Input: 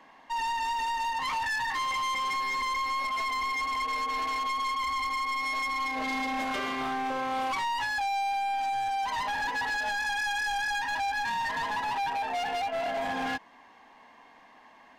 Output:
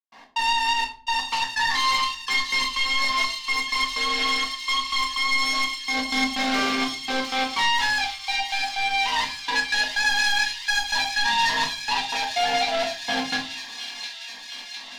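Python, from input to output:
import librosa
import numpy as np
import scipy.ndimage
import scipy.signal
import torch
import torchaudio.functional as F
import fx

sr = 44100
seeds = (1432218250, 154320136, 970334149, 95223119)

p1 = scipy.signal.medfilt(x, 15)
p2 = fx.step_gate(p1, sr, bpm=125, pattern='.x.xxxx..x', floor_db=-60.0, edge_ms=4.5)
p3 = np.clip(p2, -10.0 ** (-35.0 / 20.0), 10.0 ** (-35.0 / 20.0))
p4 = p2 + (p3 * librosa.db_to_amplitude(-5.5))
p5 = fx.peak_eq(p4, sr, hz=3600.0, db=14.0, octaves=1.9)
p6 = p5 + fx.echo_wet_highpass(p5, sr, ms=706, feedback_pct=73, hz=3100.0, wet_db=-5.0, dry=0)
p7 = fx.room_shoebox(p6, sr, seeds[0], volume_m3=330.0, walls='furnished', distance_m=1.7)
y = p7 * librosa.db_to_amplitude(-1.5)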